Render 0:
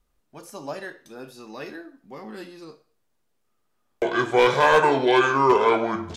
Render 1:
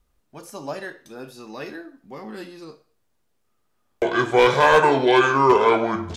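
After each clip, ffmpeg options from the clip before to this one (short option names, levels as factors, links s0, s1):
-af "equalizer=f=73:w=0.95:g=4,volume=1.26"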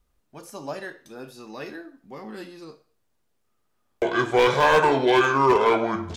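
-af "asoftclip=type=hard:threshold=0.316,volume=0.794"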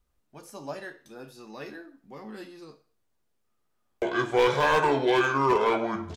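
-filter_complex "[0:a]asplit=2[s0][s1];[s1]adelay=14,volume=0.282[s2];[s0][s2]amix=inputs=2:normalize=0,volume=0.596"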